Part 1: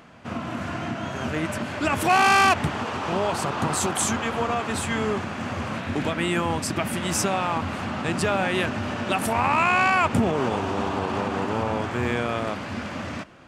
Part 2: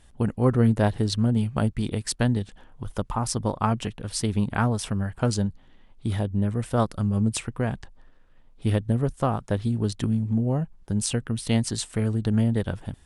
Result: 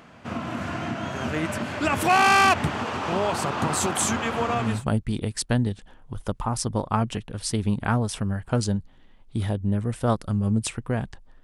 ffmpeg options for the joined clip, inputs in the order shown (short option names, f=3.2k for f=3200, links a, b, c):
-filter_complex "[0:a]apad=whole_dur=11.43,atrim=end=11.43,atrim=end=4.85,asetpts=PTS-STARTPTS[a];[1:a]atrim=start=1.21:end=8.13,asetpts=PTS-STARTPTS[b];[a][b]acrossfade=d=0.34:c1=qsin:c2=qsin"